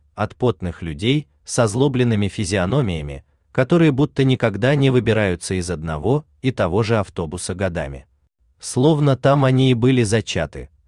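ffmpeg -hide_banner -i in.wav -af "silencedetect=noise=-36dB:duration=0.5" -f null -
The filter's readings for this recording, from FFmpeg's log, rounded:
silence_start: 8.01
silence_end: 8.63 | silence_duration: 0.62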